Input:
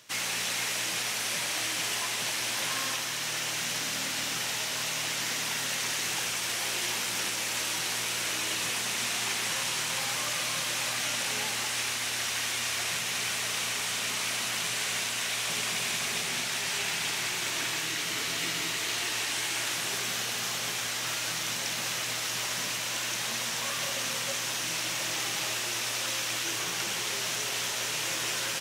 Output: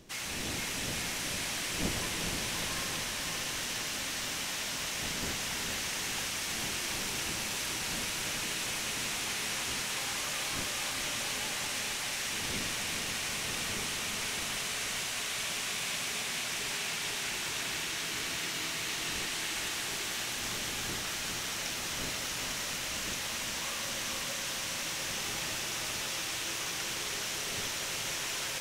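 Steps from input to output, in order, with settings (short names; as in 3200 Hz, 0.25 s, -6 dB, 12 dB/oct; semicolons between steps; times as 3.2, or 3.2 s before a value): wind noise 330 Hz -43 dBFS; diffused feedback echo 0.454 s, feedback 69%, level -4 dB; gain -6.5 dB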